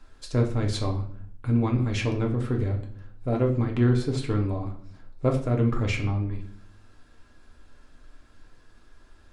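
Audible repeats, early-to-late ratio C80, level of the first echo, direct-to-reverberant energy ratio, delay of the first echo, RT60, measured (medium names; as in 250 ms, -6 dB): no echo, 13.5 dB, no echo, 1.5 dB, no echo, 0.60 s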